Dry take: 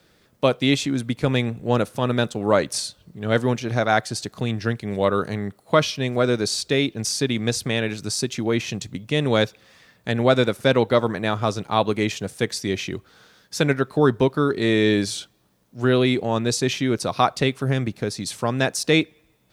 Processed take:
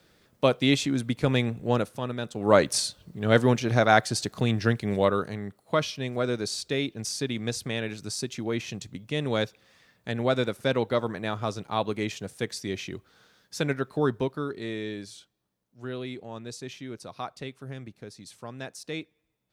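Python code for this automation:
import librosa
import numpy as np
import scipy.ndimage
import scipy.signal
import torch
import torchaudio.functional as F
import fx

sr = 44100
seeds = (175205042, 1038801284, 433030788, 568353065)

y = fx.gain(x, sr, db=fx.line((1.66, -3.0), (2.2, -12.0), (2.55, 0.0), (4.92, 0.0), (5.32, -7.5), (14.06, -7.5), (14.96, -17.0)))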